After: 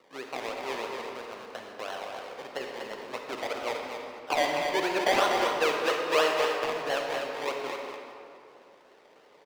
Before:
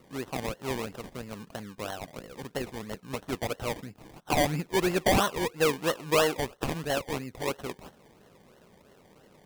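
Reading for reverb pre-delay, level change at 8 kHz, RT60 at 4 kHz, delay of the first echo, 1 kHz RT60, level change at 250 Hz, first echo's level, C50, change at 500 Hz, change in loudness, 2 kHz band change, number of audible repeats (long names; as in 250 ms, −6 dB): 33 ms, −4.5 dB, 1.5 s, 244 ms, 2.4 s, −6.0 dB, −6.5 dB, 0.5 dB, +1.0 dB, +0.5 dB, +3.0 dB, 1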